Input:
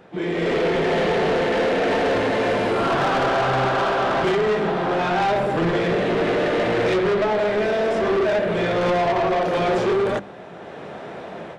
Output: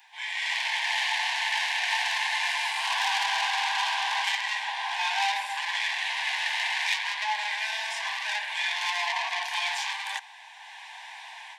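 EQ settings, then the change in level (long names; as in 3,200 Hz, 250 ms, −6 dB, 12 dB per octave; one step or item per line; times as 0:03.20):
Butterworth high-pass 830 Hz 72 dB per octave
Butterworth band-reject 1,300 Hz, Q 1.9
spectral tilt +2.5 dB per octave
0.0 dB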